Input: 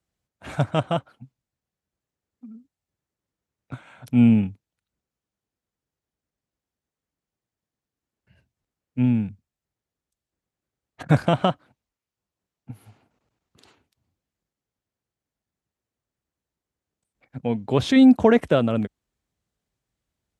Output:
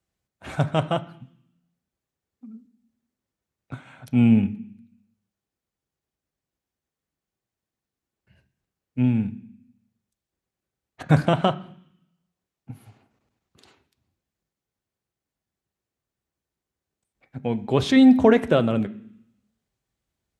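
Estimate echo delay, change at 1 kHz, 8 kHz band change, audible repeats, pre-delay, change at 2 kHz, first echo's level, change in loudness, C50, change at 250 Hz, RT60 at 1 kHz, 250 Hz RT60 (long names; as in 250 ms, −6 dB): no echo audible, 0.0 dB, can't be measured, no echo audible, 3 ms, +0.5 dB, no echo audible, 0.0 dB, 17.0 dB, −0.5 dB, 0.70 s, 0.90 s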